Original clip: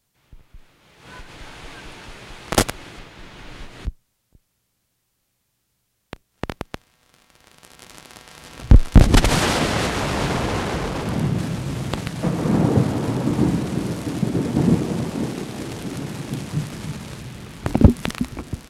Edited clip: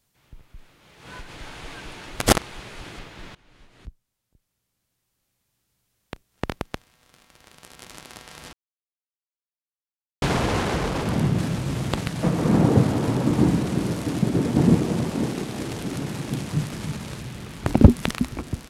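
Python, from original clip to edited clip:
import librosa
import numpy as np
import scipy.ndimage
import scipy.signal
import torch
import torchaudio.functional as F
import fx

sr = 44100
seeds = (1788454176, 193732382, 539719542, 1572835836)

y = fx.edit(x, sr, fx.reverse_span(start_s=2.07, length_s=0.76),
    fx.fade_in_from(start_s=3.35, length_s=3.25, floor_db=-21.0),
    fx.silence(start_s=8.53, length_s=1.69), tone=tone)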